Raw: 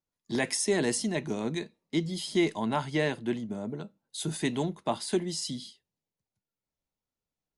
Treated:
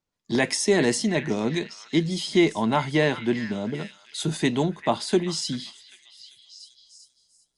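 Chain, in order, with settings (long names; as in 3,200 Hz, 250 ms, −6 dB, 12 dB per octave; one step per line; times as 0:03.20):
low-pass filter 7,500 Hz 12 dB per octave
echo through a band-pass that steps 394 ms, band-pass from 1,700 Hz, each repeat 0.7 octaves, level −9 dB
level +6.5 dB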